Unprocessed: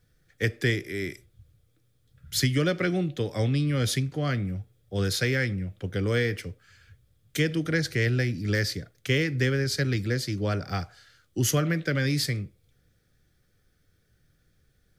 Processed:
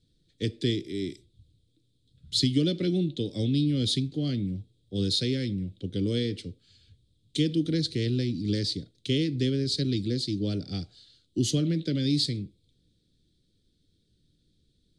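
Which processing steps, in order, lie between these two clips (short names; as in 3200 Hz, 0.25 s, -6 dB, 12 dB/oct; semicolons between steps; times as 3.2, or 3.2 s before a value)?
EQ curve 130 Hz 0 dB, 190 Hz +5 dB, 300 Hz +8 dB, 970 Hz -18 dB, 1700 Hz -17 dB, 2400 Hz -7 dB, 3900 Hz +12 dB, 5800 Hz -3 dB, 9100 Hz +1 dB, 13000 Hz -25 dB; gain -3.5 dB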